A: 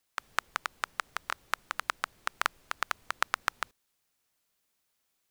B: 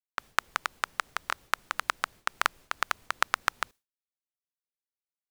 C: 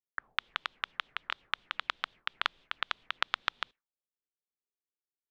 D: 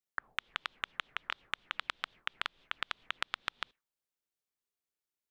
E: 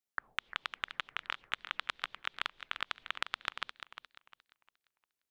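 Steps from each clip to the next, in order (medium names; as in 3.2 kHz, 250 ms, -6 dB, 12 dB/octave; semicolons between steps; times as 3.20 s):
expander -49 dBFS; trim +3 dB
peaking EQ 78 Hz -13 dB 0.59 oct; touch-sensitive low-pass 410–3500 Hz up, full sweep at -34 dBFS; trim -7.5 dB
compression, threshold -33 dBFS, peak gain reduction 10.5 dB; trim +2 dB
modulated delay 350 ms, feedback 31%, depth 119 cents, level -10.5 dB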